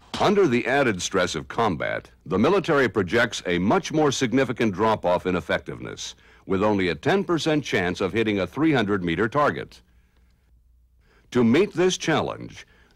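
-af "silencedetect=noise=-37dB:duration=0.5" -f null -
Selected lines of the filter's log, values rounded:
silence_start: 9.74
silence_end: 11.32 | silence_duration: 1.58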